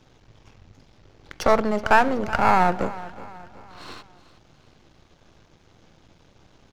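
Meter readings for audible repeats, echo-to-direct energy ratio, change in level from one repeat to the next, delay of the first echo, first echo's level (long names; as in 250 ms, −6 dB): 3, −16.5 dB, −6.5 dB, 373 ms, −17.5 dB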